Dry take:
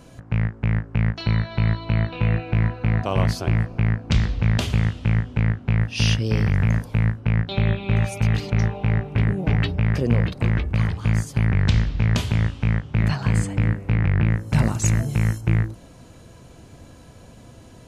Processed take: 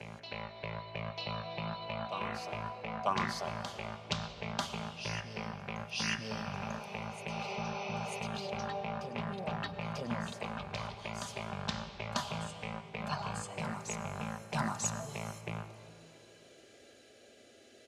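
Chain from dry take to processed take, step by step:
meter weighting curve A
healed spectral selection 0:07.32–0:08.17, 430–6,200 Hz after
high-shelf EQ 6,100 Hz −8.5 dB
comb filter 5 ms, depth 35%
phaser swept by the level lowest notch 160 Hz, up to 4,800 Hz, full sweep at −13.5 dBFS
backwards echo 943 ms −6.5 dB
convolution reverb RT60 2.4 s, pre-delay 90 ms, DRR 12.5 dB
expander for the loud parts 1.5 to 1, over −33 dBFS

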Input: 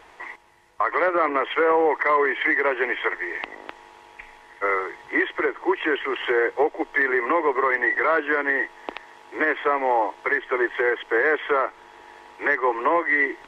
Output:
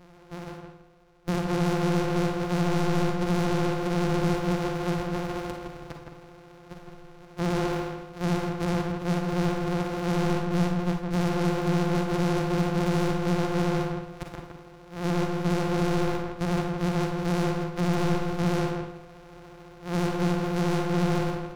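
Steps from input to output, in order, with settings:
samples sorted by size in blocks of 256 samples
low-pass filter 3,100 Hz 6 dB per octave
low-shelf EQ 100 Hz +4 dB
hard clipping −19.5 dBFS, distortion −10 dB
time stretch by overlap-add 1.6×, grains 30 ms
pitch vibrato 14 Hz 54 cents
feedback echo with a low-pass in the loop 163 ms, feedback 28%, low-pass 2,300 Hz, level −4 dB
four-comb reverb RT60 0.38 s, DRR 5 dB
level −2 dB

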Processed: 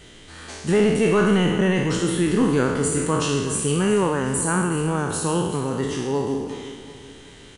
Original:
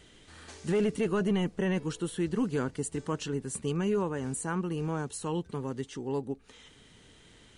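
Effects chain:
peak hold with a decay on every bin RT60 1.20 s
repeating echo 373 ms, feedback 42%, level −13.5 dB
level +8 dB

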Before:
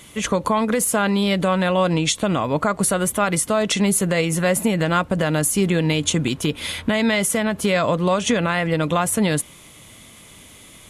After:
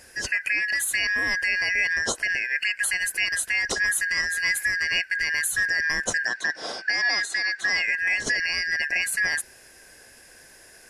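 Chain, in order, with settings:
band-splitting scrambler in four parts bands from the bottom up 3142
0:06.25–0:07.73: loudspeaker in its box 250–7,600 Hz, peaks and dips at 740 Hz +6 dB, 1,400 Hz +4 dB, 2,600 Hz −5 dB, 3,900 Hz +8 dB
level −5.5 dB

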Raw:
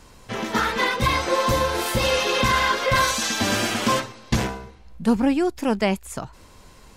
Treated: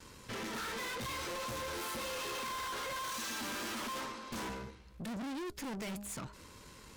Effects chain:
0:01.82–0:04.49: octave-band graphic EQ 125/250/1,000 Hz −12/+6/+8 dB
noise gate with hold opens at −45 dBFS
high-pass filter 92 Hz 6 dB per octave
parametric band 720 Hz −12 dB 0.39 octaves
hum removal 204.4 Hz, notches 3
tube saturation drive 39 dB, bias 0.6

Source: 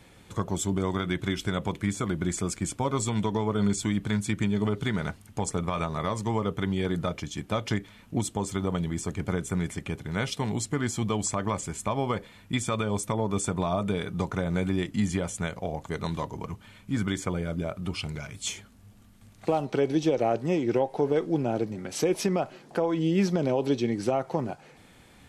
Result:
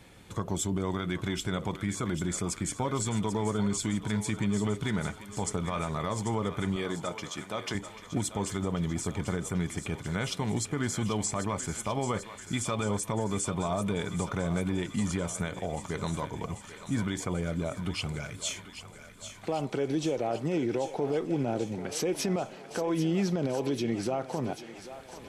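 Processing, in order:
0:06.76–0:07.75: high-pass filter 350 Hz 6 dB per octave
brickwall limiter −21 dBFS, peak gain reduction 7 dB
on a send: feedback echo with a high-pass in the loop 790 ms, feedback 72%, high-pass 570 Hz, level −10.5 dB

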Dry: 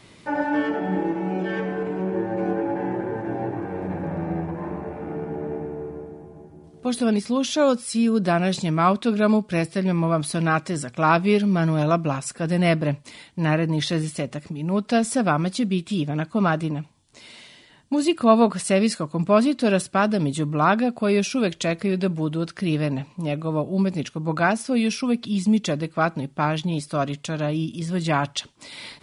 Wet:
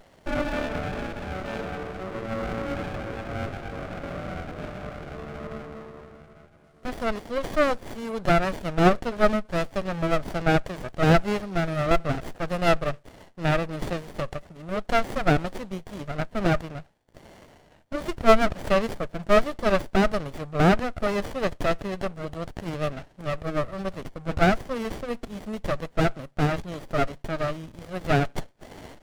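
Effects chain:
low shelf with overshoot 450 Hz −13 dB, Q 3
windowed peak hold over 33 samples

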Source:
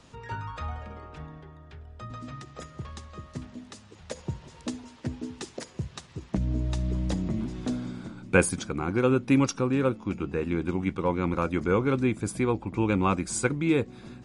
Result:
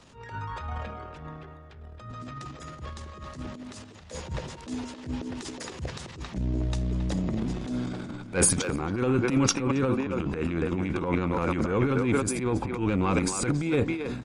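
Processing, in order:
far-end echo of a speakerphone 270 ms, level −8 dB
soft clipping −12.5 dBFS, distortion −21 dB
transient designer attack −11 dB, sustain +11 dB

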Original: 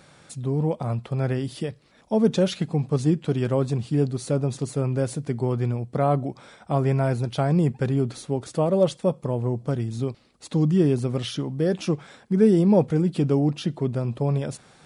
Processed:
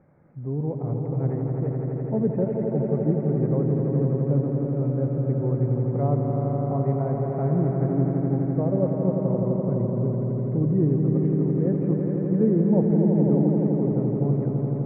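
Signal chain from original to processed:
Butterworth low-pass 2,100 Hz 72 dB per octave
parametric band 1,600 Hz −14.5 dB 1.6 octaves
echo that builds up and dies away 84 ms, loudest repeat 5, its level −6.5 dB
level −3 dB

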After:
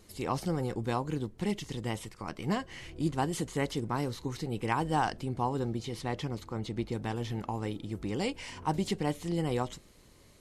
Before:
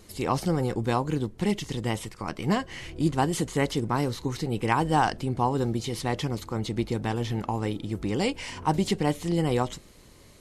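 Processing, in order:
0:05.59–0:06.93: high-shelf EQ 6,700 Hz −7 dB
level −6 dB

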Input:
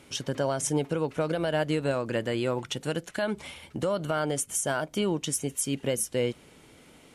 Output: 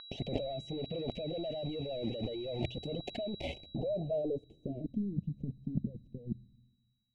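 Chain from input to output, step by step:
log-companded quantiser 2 bits
elliptic band-stop filter 670–2,500 Hz, stop band 50 dB
compressor whose output falls as the input rises −35 dBFS, ratio −1
reverb reduction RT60 1.7 s
pitch vibrato 8.5 Hz 33 cents
steady tone 3,900 Hz −31 dBFS
on a send at −5.5 dB: guitar amp tone stack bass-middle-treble 10-0-1 + convolution reverb RT60 1.1 s, pre-delay 6 ms
on the sum: low-pass filter sweep 1,400 Hz → 190 Hz, 0:03.42–0:05.12

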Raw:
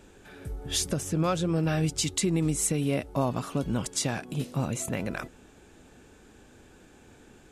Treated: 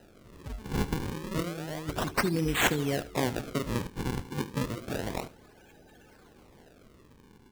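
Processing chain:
spectral magnitudes quantised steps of 30 dB
0:01.08–0:02.07: compressor whose output falls as the input rises −31 dBFS, ratio −0.5
low-pass filter sweep 8,800 Hz → 3,000 Hz, 0:03.06–0:04.26
sample-and-hold swept by an LFO 39×, swing 160% 0.3 Hz
single-tap delay 74 ms −16.5 dB
level −2 dB

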